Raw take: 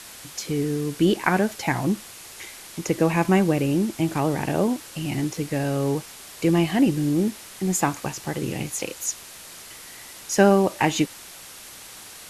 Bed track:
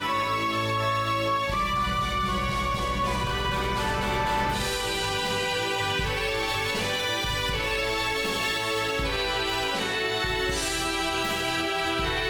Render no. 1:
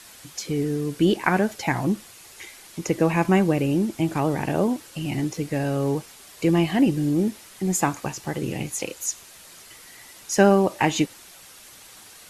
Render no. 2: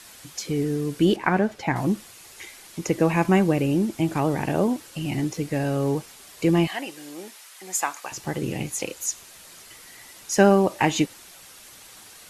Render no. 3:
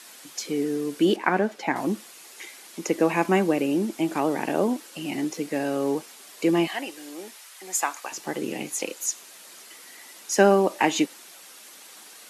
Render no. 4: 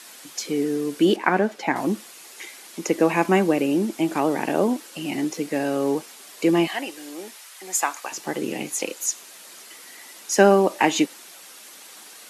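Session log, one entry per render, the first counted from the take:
noise reduction 6 dB, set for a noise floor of -43 dBFS
1.16–1.76 s: low-pass 2.3 kHz 6 dB/octave; 6.67–8.12 s: high-pass 820 Hz
high-pass 220 Hz 24 dB/octave
trim +2.5 dB

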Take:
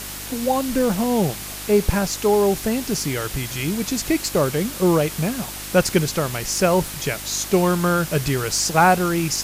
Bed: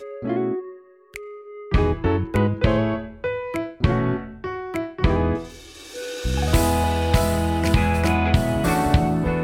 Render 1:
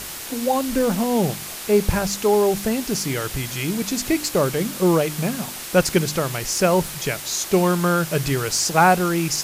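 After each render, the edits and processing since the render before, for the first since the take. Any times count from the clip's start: de-hum 50 Hz, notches 6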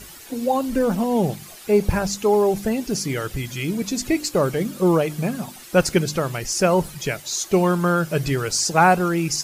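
noise reduction 12 dB, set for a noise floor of -33 dBFS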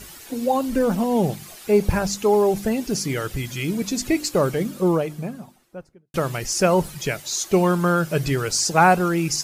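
4.39–6.14 s: studio fade out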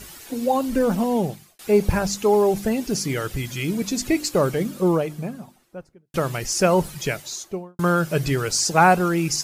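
1.08–1.59 s: fade out; 7.11–7.79 s: studio fade out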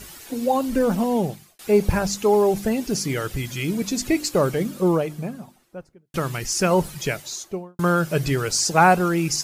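6.17–6.71 s: peaking EQ 600 Hz -6 dB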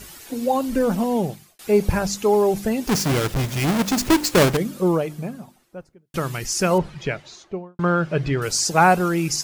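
2.87–4.57 s: square wave that keeps the level; 6.78–8.42 s: low-pass 3 kHz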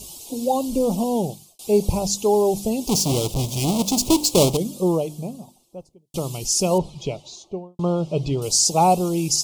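Chebyshev band-stop 860–3200 Hz, order 2; peaking EQ 8.3 kHz +6 dB 1.5 oct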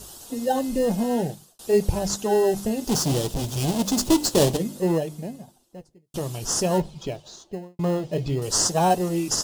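flange 0.55 Hz, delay 1.4 ms, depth 9 ms, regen -53%; in parallel at -10.5 dB: sample-and-hold 19×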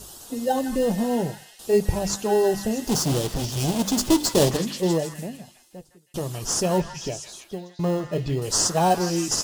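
repeats whose band climbs or falls 160 ms, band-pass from 1.6 kHz, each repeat 0.7 oct, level -3 dB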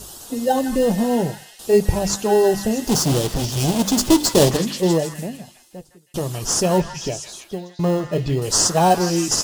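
trim +4.5 dB

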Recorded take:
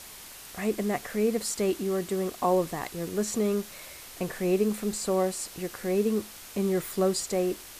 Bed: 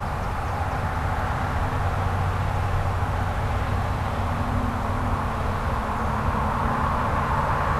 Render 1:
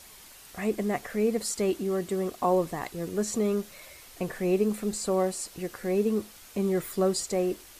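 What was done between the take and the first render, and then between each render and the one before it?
noise reduction 6 dB, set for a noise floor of -46 dBFS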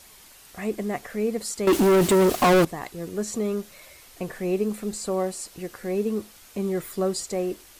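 1.67–2.65 s: waveshaping leveller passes 5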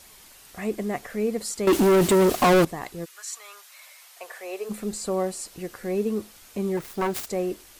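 3.04–4.69 s: high-pass 1.3 kHz -> 470 Hz 24 dB/octave; 6.77–7.27 s: self-modulated delay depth 0.59 ms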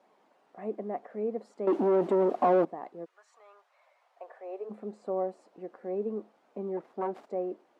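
Chebyshev band-pass 220–730 Hz, order 2; tilt EQ +4 dB/octave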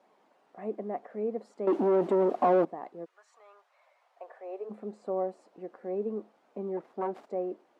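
no audible change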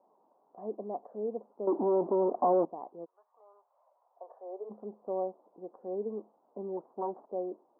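elliptic low-pass 1 kHz, stop band 80 dB; tilt EQ +2 dB/octave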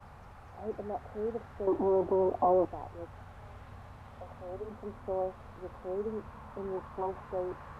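add bed -24.5 dB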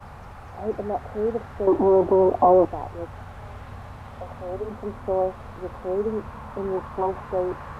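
trim +10 dB

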